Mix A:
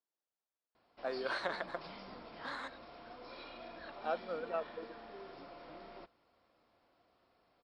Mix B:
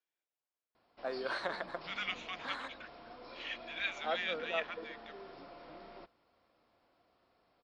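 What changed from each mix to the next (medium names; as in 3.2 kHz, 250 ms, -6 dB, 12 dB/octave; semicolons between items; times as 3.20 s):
second voice: unmuted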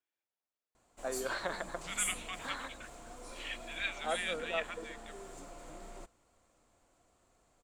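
background: remove brick-wall FIR low-pass 5.5 kHz; master: remove high-pass 200 Hz 6 dB/octave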